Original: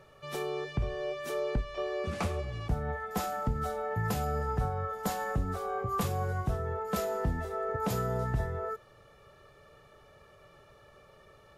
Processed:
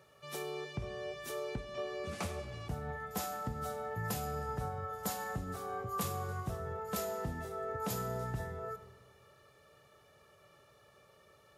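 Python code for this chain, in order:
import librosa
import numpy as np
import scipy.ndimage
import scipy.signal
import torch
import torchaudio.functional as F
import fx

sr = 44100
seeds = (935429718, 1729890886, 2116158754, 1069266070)

y = scipy.signal.sosfilt(scipy.signal.butter(2, 77.0, 'highpass', fs=sr, output='sos'), x)
y = fx.high_shelf(y, sr, hz=4300.0, db=9.0)
y = fx.rev_freeverb(y, sr, rt60_s=1.9, hf_ratio=0.7, predelay_ms=25, drr_db=11.5)
y = F.gain(torch.from_numpy(y), -6.5).numpy()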